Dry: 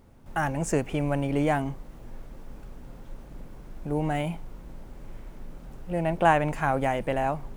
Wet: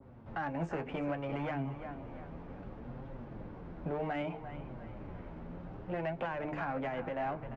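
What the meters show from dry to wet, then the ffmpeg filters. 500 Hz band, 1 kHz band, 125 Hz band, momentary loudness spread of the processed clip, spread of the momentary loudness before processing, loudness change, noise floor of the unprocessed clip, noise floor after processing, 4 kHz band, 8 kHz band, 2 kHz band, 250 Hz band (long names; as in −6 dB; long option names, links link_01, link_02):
−9.5 dB, −11.5 dB, −10.0 dB, 11 LU, 23 LU, −12.5 dB, −47 dBFS, −49 dBFS, −11.0 dB, below −30 dB, −10.0 dB, −9.0 dB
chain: -filter_complex "[0:a]highpass=52,bandreject=frequency=50:width_type=h:width=6,bandreject=frequency=100:width_type=h:width=6,bandreject=frequency=150:width_type=h:width=6,bandreject=frequency=200:width_type=h:width=6,bandreject=frequency=250:width_type=h:width=6,bandreject=frequency=300:width_type=h:width=6,bandreject=frequency=350:width_type=h:width=6,bandreject=frequency=400:width_type=h:width=6,bandreject=frequency=450:width_type=h:width=6,acrossover=split=190|740|1600[link_01][link_02][link_03][link_04];[link_02]asoftclip=type=hard:threshold=-29dB[link_05];[link_01][link_05][link_03][link_04]amix=inputs=4:normalize=0,acrossover=split=460|1400[link_06][link_07][link_08];[link_06]acompressor=threshold=-39dB:ratio=4[link_09];[link_07]acompressor=threshold=-38dB:ratio=4[link_10];[link_08]acompressor=threshold=-37dB:ratio=4[link_11];[link_09][link_10][link_11]amix=inputs=3:normalize=0,aecho=1:1:348|696|1044|1392:0.224|0.0851|0.0323|0.0123,alimiter=level_in=4.5dB:limit=-24dB:level=0:latency=1:release=317,volume=-4.5dB,flanger=delay=7.2:depth=5.3:regen=33:speed=0.65:shape=triangular,adynamicsmooth=sensitivity=4:basefreq=2200,lowpass=5200,adynamicequalizer=threshold=0.00126:dfrequency=1500:dqfactor=0.7:tfrequency=1500:tqfactor=0.7:attack=5:release=100:ratio=0.375:range=1.5:mode=cutabove:tftype=highshelf,volume=7dB"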